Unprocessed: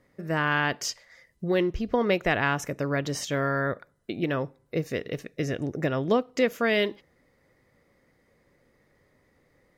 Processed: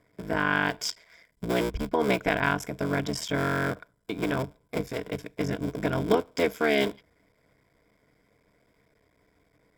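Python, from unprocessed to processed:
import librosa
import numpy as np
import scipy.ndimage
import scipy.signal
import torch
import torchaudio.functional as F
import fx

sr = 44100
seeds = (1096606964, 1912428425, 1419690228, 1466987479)

y = fx.cycle_switch(x, sr, every=3, mode='muted')
y = fx.ripple_eq(y, sr, per_octave=1.7, db=9)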